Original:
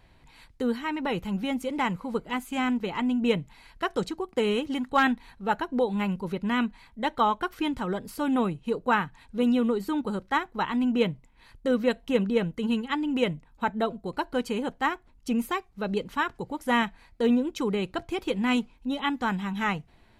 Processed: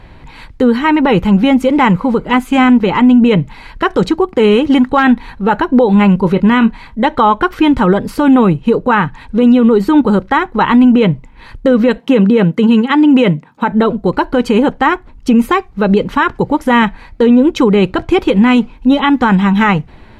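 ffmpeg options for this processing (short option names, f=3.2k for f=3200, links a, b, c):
-filter_complex "[0:a]asettb=1/sr,asplit=3[a][b][c];[a]atrim=end=6.194[d];[b]atrim=start=6.19:end=7.02,asetpts=PTS-STARTPTS,afade=t=in:d=0.004:c=qsin,afade=t=out:st=0.826:d=0.004:c=qsin,asplit=2[e][f];[f]adelay=27,volume=-13.5dB[g];[e][g]amix=inputs=2:normalize=0,atrim=end_sample=36603[h];[c]atrim=start=7.016[i];[d][h]acrossfade=d=0.004:c1=hsin:c2=qsin[j];[j][i]acrossfade=d=0.004:c1=qsin:c2=hsin,asettb=1/sr,asplit=3[k][l][m];[k]atrim=end=11.984[n];[l]atrim=start=11.98:end=13.72,asetpts=PTS-STARTPTS,afade=t=in:d=0.004:c=qsin,afade=t=out:st=1.736:d=0.004:c=qsin,highpass=f=140:w=0.5412,highpass=f=140:w=1.3066[o];[m]atrim=start=13.716[p];[n][o]acrossfade=d=0.004:c1=hsin:c2=qsin[q];[q][p]acrossfade=d=0.004:c1=qsin:c2=hsin,lowpass=f=2.1k:p=1,bandreject=f=690:w=12,alimiter=level_in=22dB:limit=-1dB:release=50:level=0:latency=1,volume=-1dB"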